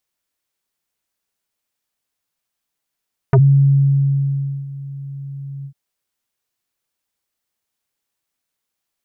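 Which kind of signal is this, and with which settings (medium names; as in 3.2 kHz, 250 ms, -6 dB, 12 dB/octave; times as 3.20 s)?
synth note square C#3 24 dB/octave, low-pass 140 Hz, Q 1.1, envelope 4 oct, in 0.06 s, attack 1.6 ms, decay 1.33 s, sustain -20 dB, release 0.08 s, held 2.32 s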